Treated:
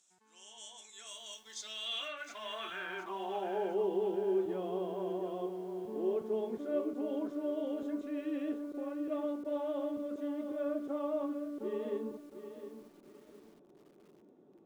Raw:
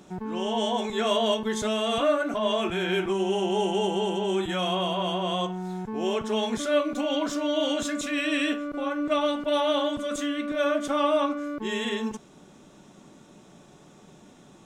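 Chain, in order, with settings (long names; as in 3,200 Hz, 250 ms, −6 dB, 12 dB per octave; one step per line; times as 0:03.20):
band-pass filter sweep 7,600 Hz → 380 Hz, 0:01.20–0:03.96
feedback echo at a low word length 711 ms, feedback 35%, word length 9 bits, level −10 dB
level −3.5 dB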